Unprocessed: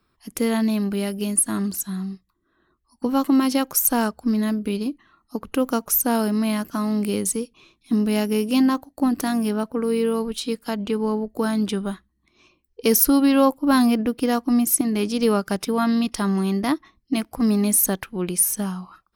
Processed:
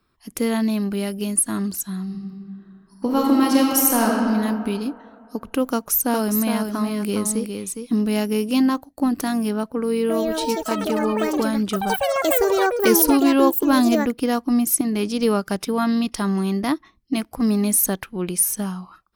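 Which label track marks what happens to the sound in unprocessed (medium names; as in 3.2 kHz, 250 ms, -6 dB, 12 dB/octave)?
2.030000	4.170000	reverb throw, RT60 2.4 s, DRR -2 dB
5.700000	8.010000	delay 411 ms -6 dB
9.810000	15.500000	ever faster or slower copies 282 ms, each echo +6 st, echoes 3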